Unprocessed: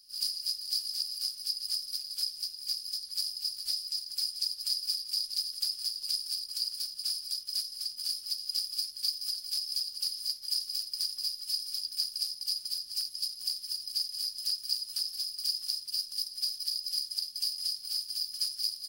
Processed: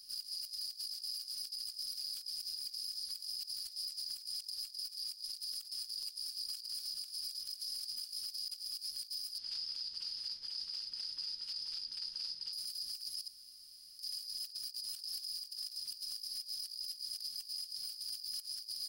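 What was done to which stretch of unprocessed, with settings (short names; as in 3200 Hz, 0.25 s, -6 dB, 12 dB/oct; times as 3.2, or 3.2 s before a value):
9.38–12.53 LPF 3700 Hz
13.28–13.99 room tone
14.75–15.19 echo throw 0.59 s, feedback 50%, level -6.5 dB
whole clip: negative-ratio compressor -39 dBFS, ratio -0.5; limiter -32 dBFS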